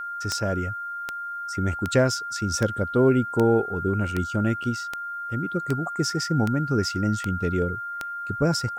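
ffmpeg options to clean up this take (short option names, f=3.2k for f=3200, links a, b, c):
-af "adeclick=t=4,bandreject=f=1.4k:w=30,agate=range=-21dB:threshold=-25dB"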